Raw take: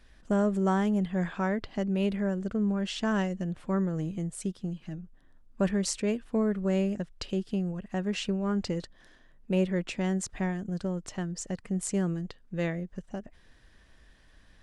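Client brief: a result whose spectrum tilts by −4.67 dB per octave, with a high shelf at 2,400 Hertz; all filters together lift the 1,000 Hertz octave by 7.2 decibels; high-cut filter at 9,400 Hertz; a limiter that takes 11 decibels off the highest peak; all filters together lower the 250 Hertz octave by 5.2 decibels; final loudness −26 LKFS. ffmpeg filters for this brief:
ffmpeg -i in.wav -af "lowpass=9400,equalizer=frequency=250:width_type=o:gain=-8.5,equalizer=frequency=1000:width_type=o:gain=9,highshelf=frequency=2400:gain=4,volume=8dB,alimiter=limit=-14.5dB:level=0:latency=1" out.wav

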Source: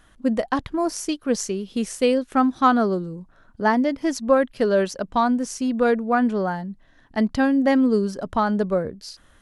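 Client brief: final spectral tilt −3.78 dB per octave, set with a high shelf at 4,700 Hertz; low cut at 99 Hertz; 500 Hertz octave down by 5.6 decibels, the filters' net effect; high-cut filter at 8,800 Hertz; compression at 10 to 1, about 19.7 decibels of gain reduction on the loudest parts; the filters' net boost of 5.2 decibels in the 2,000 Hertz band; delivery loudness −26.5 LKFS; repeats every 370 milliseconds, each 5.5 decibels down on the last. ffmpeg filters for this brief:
ffmpeg -i in.wav -af "highpass=99,lowpass=8800,equalizer=frequency=500:width_type=o:gain=-7,equalizer=frequency=2000:width_type=o:gain=6.5,highshelf=frequency=4700:gain=6.5,acompressor=threshold=-31dB:ratio=10,aecho=1:1:370|740|1110|1480|1850|2220|2590:0.531|0.281|0.149|0.079|0.0419|0.0222|0.0118,volume=7.5dB" out.wav

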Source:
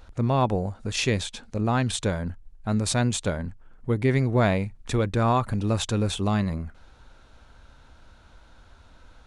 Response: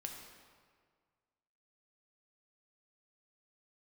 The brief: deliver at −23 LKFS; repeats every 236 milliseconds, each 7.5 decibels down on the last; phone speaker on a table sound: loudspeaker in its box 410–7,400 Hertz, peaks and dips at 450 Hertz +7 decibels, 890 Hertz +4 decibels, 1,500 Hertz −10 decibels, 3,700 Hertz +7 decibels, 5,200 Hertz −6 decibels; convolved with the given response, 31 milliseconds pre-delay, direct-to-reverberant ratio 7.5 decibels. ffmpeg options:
-filter_complex "[0:a]aecho=1:1:236|472|708|944|1180:0.422|0.177|0.0744|0.0312|0.0131,asplit=2[link_01][link_02];[1:a]atrim=start_sample=2205,adelay=31[link_03];[link_02][link_03]afir=irnorm=-1:irlink=0,volume=-5dB[link_04];[link_01][link_04]amix=inputs=2:normalize=0,highpass=frequency=410:width=0.5412,highpass=frequency=410:width=1.3066,equalizer=frequency=450:width_type=q:width=4:gain=7,equalizer=frequency=890:width_type=q:width=4:gain=4,equalizer=frequency=1500:width_type=q:width=4:gain=-10,equalizer=frequency=3700:width_type=q:width=4:gain=7,equalizer=frequency=5200:width_type=q:width=4:gain=-6,lowpass=frequency=7400:width=0.5412,lowpass=frequency=7400:width=1.3066,volume=3.5dB"

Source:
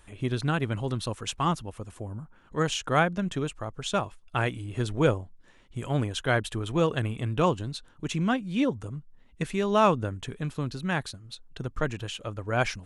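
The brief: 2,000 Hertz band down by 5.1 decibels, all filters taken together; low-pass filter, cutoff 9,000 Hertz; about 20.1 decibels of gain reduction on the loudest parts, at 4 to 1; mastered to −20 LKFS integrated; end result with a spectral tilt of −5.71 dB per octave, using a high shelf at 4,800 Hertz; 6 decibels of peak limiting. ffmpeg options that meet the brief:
ffmpeg -i in.wav -af "lowpass=9000,equalizer=frequency=2000:width_type=o:gain=-6.5,highshelf=frequency=4800:gain=-6,acompressor=threshold=-42dB:ratio=4,volume=26.5dB,alimiter=limit=-8.5dB:level=0:latency=1" out.wav

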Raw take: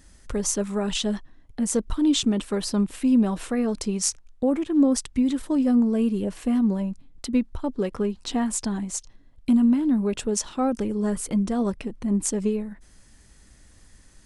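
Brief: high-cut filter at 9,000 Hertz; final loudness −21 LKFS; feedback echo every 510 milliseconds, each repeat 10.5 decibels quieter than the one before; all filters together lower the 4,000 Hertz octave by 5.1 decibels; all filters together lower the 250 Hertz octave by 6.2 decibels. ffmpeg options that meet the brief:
ffmpeg -i in.wav -af "lowpass=9000,equalizer=frequency=250:width_type=o:gain=-7,equalizer=frequency=4000:width_type=o:gain=-6.5,aecho=1:1:510|1020|1530:0.299|0.0896|0.0269,volume=8dB" out.wav

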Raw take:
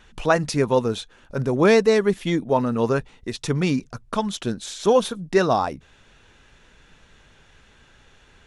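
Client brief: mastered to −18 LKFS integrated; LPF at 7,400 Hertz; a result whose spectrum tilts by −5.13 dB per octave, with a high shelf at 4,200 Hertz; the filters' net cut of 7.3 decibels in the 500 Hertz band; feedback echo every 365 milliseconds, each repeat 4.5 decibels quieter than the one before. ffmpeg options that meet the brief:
ffmpeg -i in.wav -af "lowpass=7400,equalizer=frequency=500:width_type=o:gain=-9,highshelf=frequency=4200:gain=-5,aecho=1:1:365|730|1095|1460|1825|2190|2555|2920|3285:0.596|0.357|0.214|0.129|0.0772|0.0463|0.0278|0.0167|0.01,volume=6.5dB" out.wav

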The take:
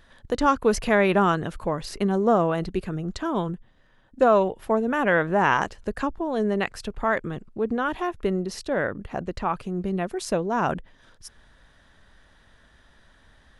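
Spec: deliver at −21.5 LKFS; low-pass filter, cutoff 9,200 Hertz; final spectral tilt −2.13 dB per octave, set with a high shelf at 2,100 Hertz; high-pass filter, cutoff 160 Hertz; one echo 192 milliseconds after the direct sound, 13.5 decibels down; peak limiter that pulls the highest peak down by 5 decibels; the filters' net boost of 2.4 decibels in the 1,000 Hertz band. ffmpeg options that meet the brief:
ffmpeg -i in.wav -af "highpass=160,lowpass=9200,equalizer=frequency=1000:width_type=o:gain=4.5,highshelf=frequency=2100:gain=-6.5,alimiter=limit=-11dB:level=0:latency=1,aecho=1:1:192:0.211,volume=3.5dB" out.wav

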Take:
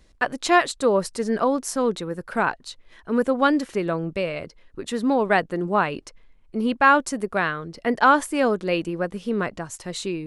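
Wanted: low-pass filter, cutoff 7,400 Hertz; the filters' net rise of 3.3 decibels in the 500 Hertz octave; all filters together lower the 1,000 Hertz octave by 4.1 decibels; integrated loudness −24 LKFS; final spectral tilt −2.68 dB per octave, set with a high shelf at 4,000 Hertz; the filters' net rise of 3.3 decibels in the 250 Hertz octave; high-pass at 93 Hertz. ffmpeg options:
ffmpeg -i in.wav -af "highpass=93,lowpass=7400,equalizer=frequency=250:width_type=o:gain=3,equalizer=frequency=500:width_type=o:gain=5,equalizer=frequency=1000:width_type=o:gain=-7,highshelf=frequency=4000:gain=-8,volume=-2dB" out.wav

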